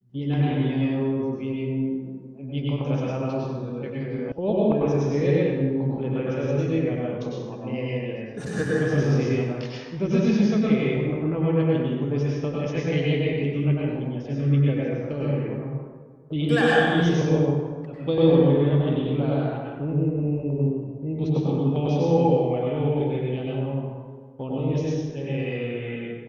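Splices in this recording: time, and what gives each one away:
4.32 s: sound stops dead

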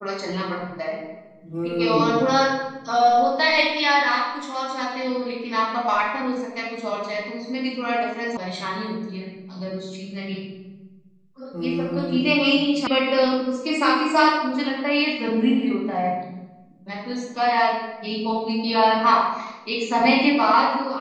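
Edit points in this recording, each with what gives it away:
8.37 s: sound stops dead
12.87 s: sound stops dead

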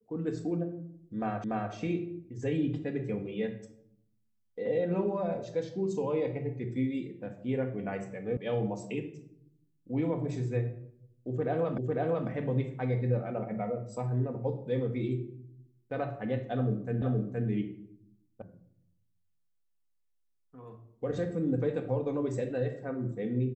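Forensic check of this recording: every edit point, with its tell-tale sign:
1.44 s: repeat of the last 0.29 s
8.37 s: sound stops dead
11.78 s: repeat of the last 0.5 s
17.02 s: repeat of the last 0.47 s
18.42 s: sound stops dead

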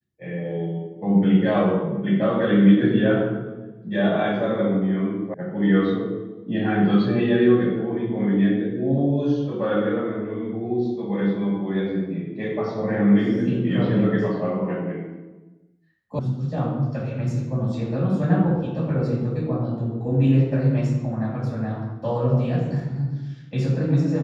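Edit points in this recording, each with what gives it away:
5.34 s: sound stops dead
16.19 s: sound stops dead

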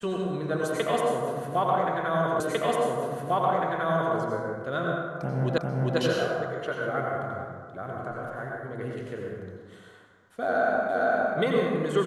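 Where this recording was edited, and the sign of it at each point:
2.40 s: repeat of the last 1.75 s
5.58 s: repeat of the last 0.4 s
10.89 s: repeat of the last 0.46 s

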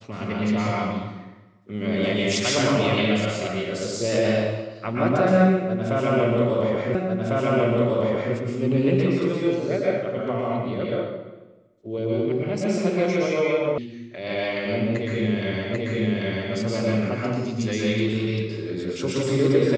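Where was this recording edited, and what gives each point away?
6.95 s: repeat of the last 1.4 s
13.78 s: sound stops dead
15.74 s: repeat of the last 0.79 s

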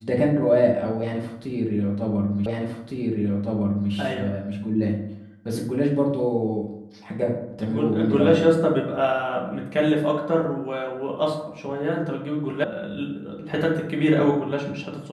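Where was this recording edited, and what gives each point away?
2.46 s: repeat of the last 1.46 s
12.64 s: sound stops dead

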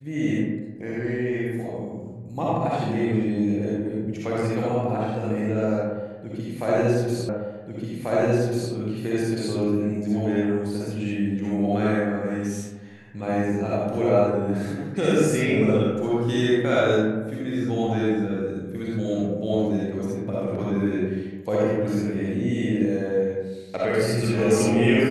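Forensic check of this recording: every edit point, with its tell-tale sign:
7.29 s: repeat of the last 1.44 s

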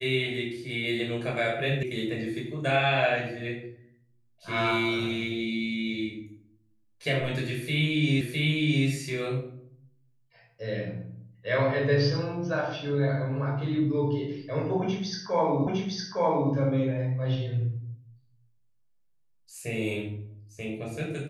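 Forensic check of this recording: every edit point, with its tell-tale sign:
1.83 s: sound stops dead
8.21 s: repeat of the last 0.66 s
15.67 s: repeat of the last 0.86 s

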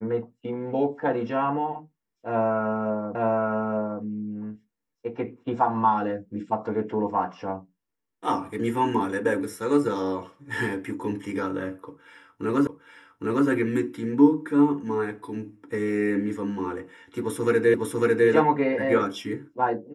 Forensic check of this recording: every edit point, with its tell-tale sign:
3.15 s: repeat of the last 0.87 s
12.67 s: repeat of the last 0.81 s
17.74 s: repeat of the last 0.55 s

